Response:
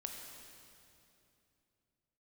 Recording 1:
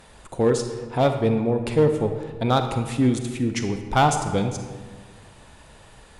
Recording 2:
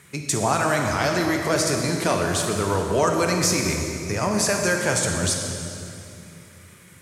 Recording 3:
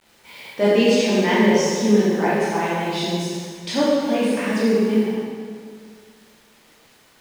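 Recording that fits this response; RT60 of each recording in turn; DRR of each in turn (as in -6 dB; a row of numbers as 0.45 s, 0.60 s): 2; 1.5 s, 2.8 s, 2.0 s; 6.0 dB, 1.5 dB, -9.0 dB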